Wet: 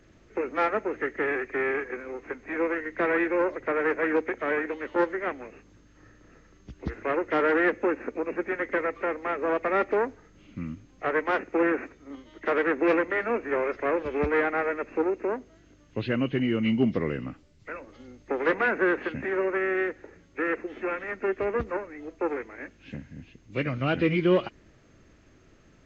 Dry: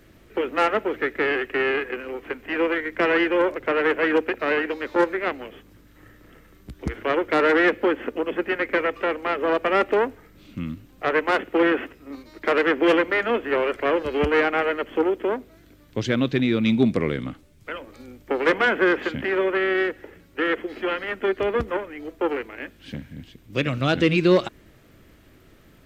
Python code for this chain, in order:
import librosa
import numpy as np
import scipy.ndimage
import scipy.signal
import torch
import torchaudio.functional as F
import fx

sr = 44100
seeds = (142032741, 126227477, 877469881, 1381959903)

y = fx.freq_compress(x, sr, knee_hz=1800.0, ratio=1.5)
y = F.gain(torch.from_numpy(y), -4.5).numpy()